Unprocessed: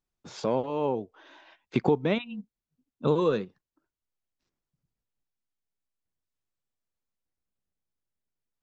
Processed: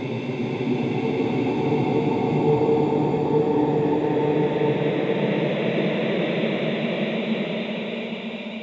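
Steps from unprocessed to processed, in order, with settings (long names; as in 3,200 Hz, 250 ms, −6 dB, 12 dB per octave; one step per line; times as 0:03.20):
feedback delay with all-pass diffusion 945 ms, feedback 57%, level −12 dB
extreme stretch with random phases 14×, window 0.50 s, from 0:01.68
level +3.5 dB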